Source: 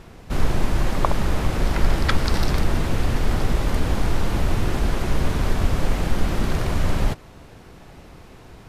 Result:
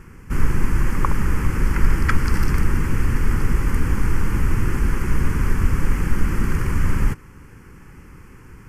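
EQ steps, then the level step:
phaser with its sweep stopped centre 1,600 Hz, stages 4
+2.5 dB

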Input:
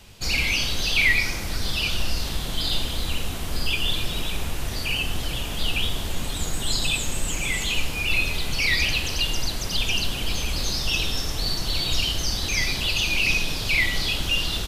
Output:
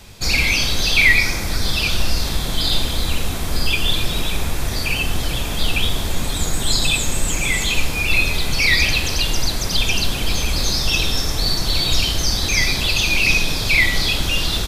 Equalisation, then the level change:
notch filter 2,900 Hz, Q 8.3
+6.5 dB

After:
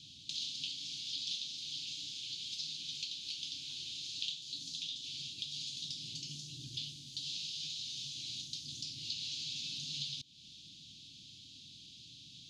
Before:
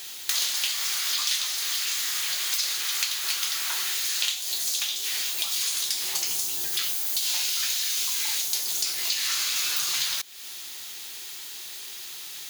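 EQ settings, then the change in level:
inverse Chebyshev band-stop filter 420–2,000 Hz, stop band 40 dB
head-to-tape spacing loss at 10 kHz 43 dB
parametric band 910 Hz −3 dB 0.48 octaves
+7.5 dB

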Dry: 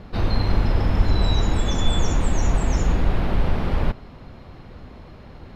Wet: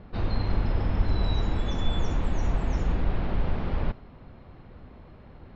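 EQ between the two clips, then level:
dynamic equaliser 5,900 Hz, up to +5 dB, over −49 dBFS, Q 0.81
high-frequency loss of the air 220 metres
−6.0 dB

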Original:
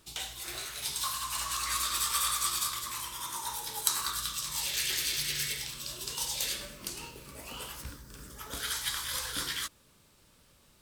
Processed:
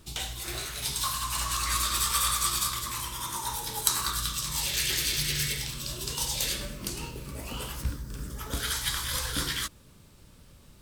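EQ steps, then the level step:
low-shelf EQ 290 Hz +11 dB
+3.0 dB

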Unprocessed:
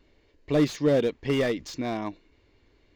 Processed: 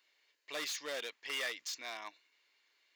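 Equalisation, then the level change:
high-pass filter 1,400 Hz 12 dB per octave
high-shelf EQ 6,600 Hz +7.5 dB
−3.0 dB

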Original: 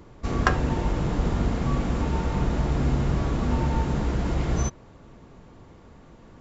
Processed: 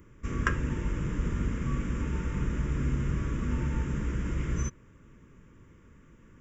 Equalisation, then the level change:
high-shelf EQ 3,800 Hz +7 dB
phaser with its sweep stopped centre 1,800 Hz, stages 4
−5.0 dB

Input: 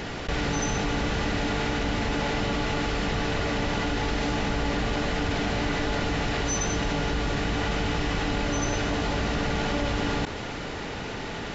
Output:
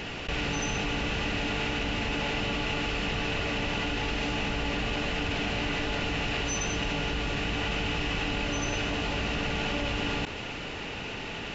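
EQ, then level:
parametric band 2,700 Hz +11 dB 0.4 octaves
−4.5 dB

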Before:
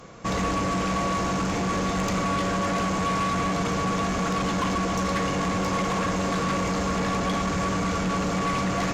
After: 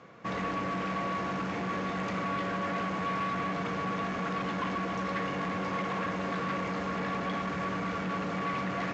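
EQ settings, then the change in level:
band-pass filter 120–3,500 Hz
parametric band 1,800 Hz +4 dB 1 octave
−7.5 dB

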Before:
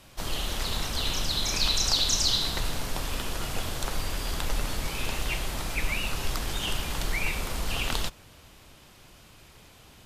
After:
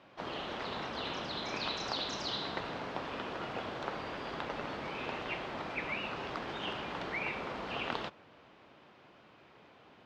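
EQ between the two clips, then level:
Bessel high-pass filter 300 Hz, order 2
high-frequency loss of the air 220 metres
high-shelf EQ 3,200 Hz −12 dB
+1.0 dB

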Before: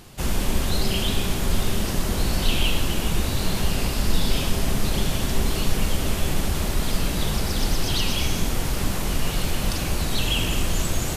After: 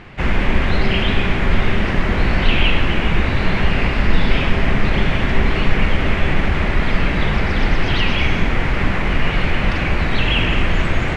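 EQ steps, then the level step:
low-pass with resonance 2,100 Hz, resonance Q 2.7
+6.5 dB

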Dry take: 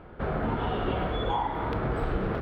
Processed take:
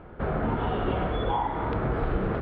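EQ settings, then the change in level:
high-frequency loss of the air 200 metres
+2.0 dB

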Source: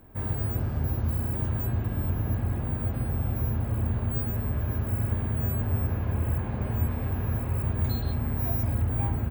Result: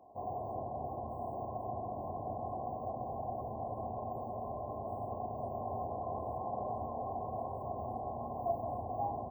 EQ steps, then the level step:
formant filter a
linear-phase brick-wall band-stop 1,100–11,000 Hz
+11.0 dB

